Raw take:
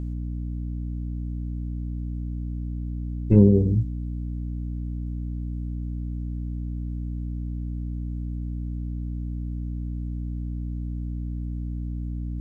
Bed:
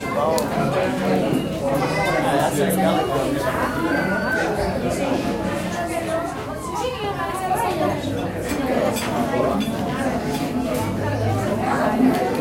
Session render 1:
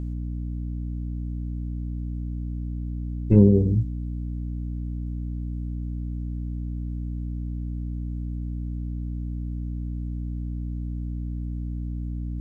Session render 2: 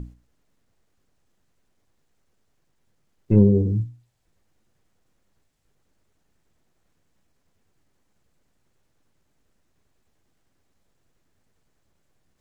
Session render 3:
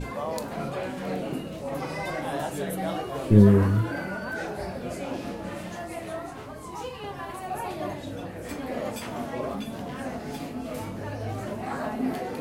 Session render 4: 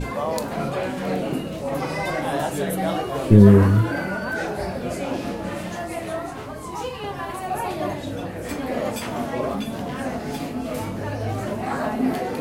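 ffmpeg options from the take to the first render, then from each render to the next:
-af anull
-af "bandreject=f=60:t=h:w=6,bandreject=f=120:t=h:w=6,bandreject=f=180:t=h:w=6,bandreject=f=240:t=h:w=6,bandreject=f=300:t=h:w=6"
-filter_complex "[1:a]volume=-11.5dB[a];[0:a][a]amix=inputs=2:normalize=0"
-af "volume=6dB,alimiter=limit=-2dB:level=0:latency=1"

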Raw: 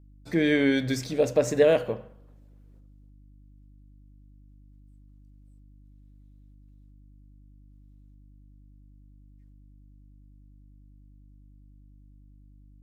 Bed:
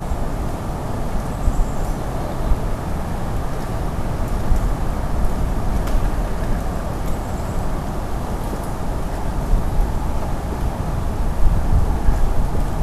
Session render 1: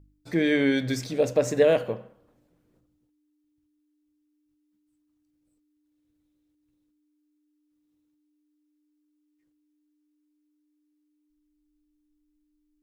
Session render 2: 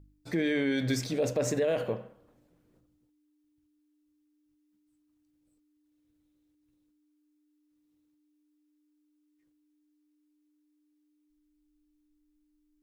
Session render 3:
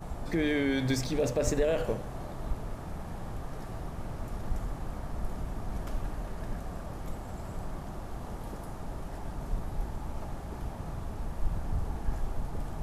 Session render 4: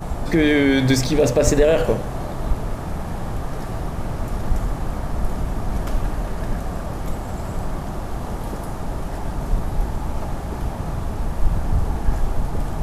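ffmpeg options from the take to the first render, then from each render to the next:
-af "bandreject=f=50:t=h:w=4,bandreject=f=100:t=h:w=4,bandreject=f=150:t=h:w=4,bandreject=f=200:t=h:w=4,bandreject=f=250:t=h:w=4"
-af "alimiter=limit=-20dB:level=0:latency=1:release=34"
-filter_complex "[1:a]volume=-15.5dB[a];[0:a][a]amix=inputs=2:normalize=0"
-af "volume=12dB"

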